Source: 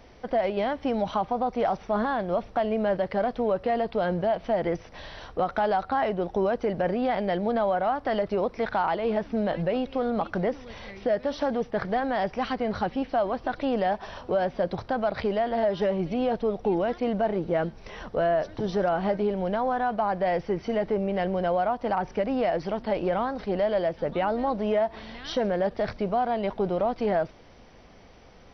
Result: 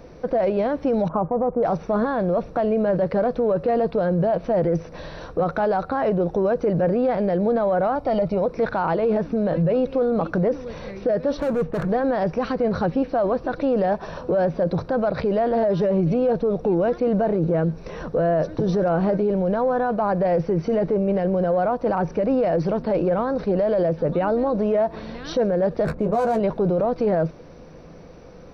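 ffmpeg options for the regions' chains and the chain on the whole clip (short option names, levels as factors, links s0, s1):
-filter_complex "[0:a]asettb=1/sr,asplit=3[s0][s1][s2];[s0]atrim=end=1.084[s3];[s1]atrim=start=1.08:end=1.63,asetpts=PTS-STARTPTS,afade=t=in:d=0.004:c=qsin,afade=t=out:st=0.546:d=0.004:c=qsin,lowpass=f=1300:w=0.5412,lowpass=f=1300:w=1.3066,agate=range=0.0224:threshold=0.0112:ratio=3:release=100:detection=peak[s4];[s2]atrim=start=1.626[s5];[s3][s4]acrossfade=d=0.004:c1=hsin:c2=qsin[s6];[s6][s5]acrossfade=d=0.004:c1=qsin:c2=hsin,asettb=1/sr,asplit=3[s7][s8][s9];[s7]atrim=end=7.954[s10];[s8]atrim=start=7.95:end=8.46,asetpts=PTS-STARTPTS,afade=t=in:d=0.004:c=qsin,afade=t=out:st=0.506:d=0.004:c=qsin,asuperstop=centerf=1600:order=4:qfactor=4.6,aecho=1:1:1.3:0.49,atrim=end_sample=22491[s11];[s9]atrim=start=8.456[s12];[s10][s11]acrossfade=d=0.004:c1=hsin:c2=qsin[s13];[s13][s12]acrossfade=d=0.004:c1=qsin:c2=hsin,asettb=1/sr,asplit=3[s14][s15][s16];[s14]atrim=end=11.374[s17];[s15]atrim=start=11.37:end=11.89,asetpts=PTS-STARTPTS,afade=t=in:d=0.004:c=qsin,afade=t=out:st=0.516:d=0.004:c=qsin,lowpass=2900,lowshelf=f=74:g=9.5,volume=29.9,asoftclip=hard,volume=0.0335[s18];[s16]atrim=start=11.886[s19];[s17][s18]acrossfade=d=0.004:c1=hsin:c2=qsin[s20];[s20][s19]acrossfade=d=0.004:c1=qsin:c2=hsin,asettb=1/sr,asplit=3[s21][s22][s23];[s21]atrim=end=25.854[s24];[s22]atrim=start=25.85:end=26.4,asetpts=PTS-STARTPTS,afade=t=in:d=0.004:c=qsin,afade=t=out:st=0.546:d=0.004:c=qsin,adynamicsmooth=sensitivity=7:basefreq=1100,asplit=2[s25][s26];[s26]adelay=14,volume=0.631[s27];[s25][s27]amix=inputs=2:normalize=0,atrim=end_sample=24255[s28];[s23]atrim=start=26.396[s29];[s24][s28]acrossfade=d=0.004:c1=hsin:c2=qsin[s30];[s30][s29]acrossfade=d=0.004:c1=qsin:c2=hsin,equalizer=f=160:t=o:w=0.33:g=12,equalizer=f=315:t=o:w=0.33:g=6,equalizer=f=500:t=o:w=0.33:g=8,equalizer=f=800:t=o:w=0.33:g=-4,equalizer=f=2000:t=o:w=0.33:g=-7,equalizer=f=3150:t=o:w=0.33:g=-11,equalizer=f=5000:t=o:w=0.33:g=-5,acontrast=38,alimiter=limit=0.2:level=0:latency=1:release=18"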